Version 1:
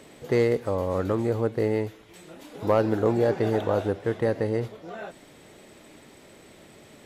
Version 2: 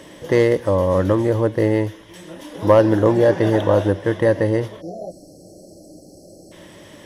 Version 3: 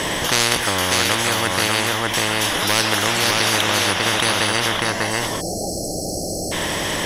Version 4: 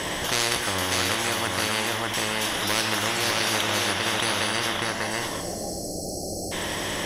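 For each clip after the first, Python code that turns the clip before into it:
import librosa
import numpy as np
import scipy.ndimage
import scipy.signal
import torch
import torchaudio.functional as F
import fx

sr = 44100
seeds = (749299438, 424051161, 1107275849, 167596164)

y1 = fx.spec_erase(x, sr, start_s=4.81, length_s=1.71, low_hz=800.0, high_hz=4100.0)
y1 = fx.ripple_eq(y1, sr, per_octave=1.2, db=8)
y1 = y1 * librosa.db_to_amplitude(7.0)
y2 = y1 + 10.0 ** (-6.0 / 20.0) * np.pad(y1, (int(596 * sr / 1000.0), 0))[:len(y1)]
y2 = fx.spectral_comp(y2, sr, ratio=10.0)
y3 = fx.rev_plate(y2, sr, seeds[0], rt60_s=1.2, hf_ratio=0.9, predelay_ms=0, drr_db=7.0)
y3 = y3 * librosa.db_to_amplitude(-7.0)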